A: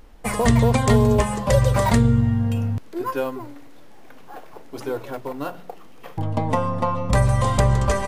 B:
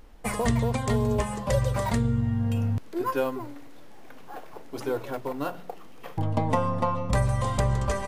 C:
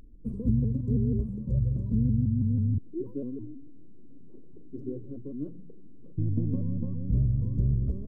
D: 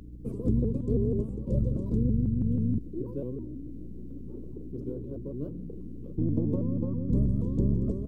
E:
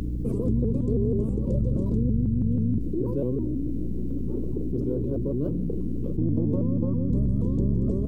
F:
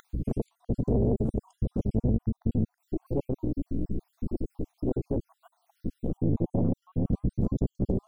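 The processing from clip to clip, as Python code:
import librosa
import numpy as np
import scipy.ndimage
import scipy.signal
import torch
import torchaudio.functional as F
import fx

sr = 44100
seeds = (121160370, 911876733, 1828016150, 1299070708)

y1 = fx.rider(x, sr, range_db=4, speed_s=0.5)
y1 = F.gain(torch.from_numpy(y1), -5.5).numpy()
y2 = scipy.signal.sosfilt(scipy.signal.cheby2(4, 40, 680.0, 'lowpass', fs=sr, output='sos'), y1)
y2 = fx.vibrato_shape(y2, sr, shape='saw_up', rate_hz=6.2, depth_cents=160.0)
y3 = fx.spec_clip(y2, sr, under_db=16)
y3 = fx.add_hum(y3, sr, base_hz=60, snr_db=16)
y4 = fx.env_flatten(y3, sr, amount_pct=70)
y5 = fx.spec_dropout(y4, sr, seeds[0], share_pct=61)
y5 = fx.doppler_dist(y5, sr, depth_ms=0.74)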